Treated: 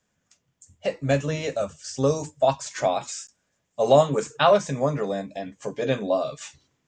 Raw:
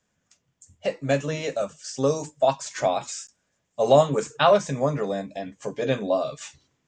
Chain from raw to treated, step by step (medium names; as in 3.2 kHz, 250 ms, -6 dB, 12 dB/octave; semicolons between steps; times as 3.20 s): 0.93–2.70 s: peaking EQ 80 Hz +14.5 dB 0.84 oct